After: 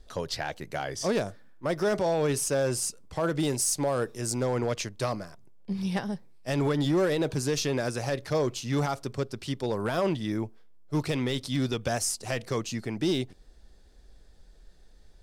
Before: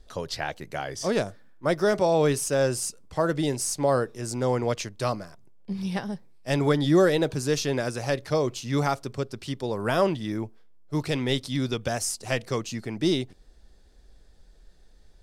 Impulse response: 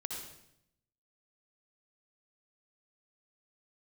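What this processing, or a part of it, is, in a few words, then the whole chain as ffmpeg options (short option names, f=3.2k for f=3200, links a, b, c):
limiter into clipper: -filter_complex "[0:a]asettb=1/sr,asplit=3[a][b][c];[a]atrim=end=3.404[d];[b]atrim=start=3.4:end=4.41,asetpts=PTS-STARTPTS,afade=t=in:d=0.004:c=qsin,afade=t=out:st=1.006:d=0.004:c=qsin,highshelf=f=5.8k:g=6[e];[c]atrim=start=4.406[f];[d][e]acrossfade=d=0.004:c1=hsin:c2=qsin[g];[g][f]acrossfade=d=0.004:c1=qsin:c2=hsin,alimiter=limit=-17dB:level=0:latency=1:release=51,asoftclip=type=hard:threshold=-20dB"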